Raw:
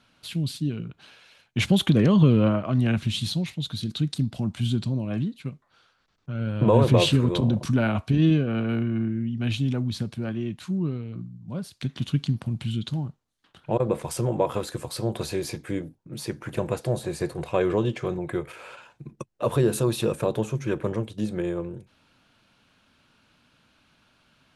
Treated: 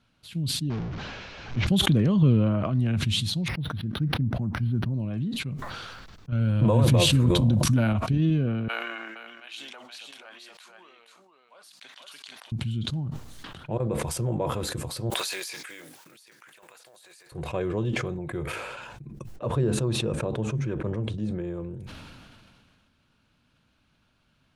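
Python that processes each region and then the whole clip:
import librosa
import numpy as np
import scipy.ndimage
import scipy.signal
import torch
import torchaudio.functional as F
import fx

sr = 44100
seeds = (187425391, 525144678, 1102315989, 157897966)

y = fx.chain(x, sr, fx.delta_mod(bps=32000, step_db=-25.0),
    fx.high_shelf(hz=2900.0, db=-12.0), at=(0.7, 1.67))
y = fx.chain(y, sr, fx.high_shelf_res(hz=2400.0, db=-10.0, q=1.5),
    fx.resample_linear(factor=6), at=(3.48, 4.94))
y = fx.chain(y, sr, fx.high_shelf(hz=7000.0, db=12.0),
    fx.notch(hz=400.0, q=5.3),
    fx.env_flatten(amount_pct=50), at=(6.32, 7.93))
y = fx.chain(y, sr, fx.highpass(hz=720.0, slope=24),
    fx.echo_single(ms=475, db=-4.5), at=(8.68, 12.52))
y = fx.chain(y, sr, fx.block_float(bits=7),
    fx.highpass(hz=1400.0, slope=12),
    fx.over_compress(threshold_db=-49.0, ratio=-1.0), at=(15.1, 17.32))
y = fx.chain(y, sr, fx.lowpass(hz=9400.0, slope=24),
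    fx.high_shelf(hz=3100.0, db=-8.0), at=(19.36, 21.54))
y = fx.low_shelf(y, sr, hz=170.0, db=10.0)
y = fx.sustainer(y, sr, db_per_s=26.0)
y = y * 10.0 ** (-8.0 / 20.0)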